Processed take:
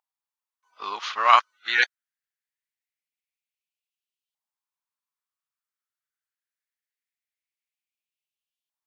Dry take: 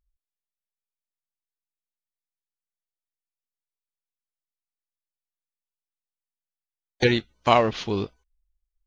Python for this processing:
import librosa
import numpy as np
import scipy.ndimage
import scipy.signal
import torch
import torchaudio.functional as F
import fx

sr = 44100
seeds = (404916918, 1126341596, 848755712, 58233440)

y = x[::-1].copy()
y = fx.filter_lfo_highpass(y, sr, shape='saw_up', hz=0.23, low_hz=850.0, high_hz=3100.0, q=4.0)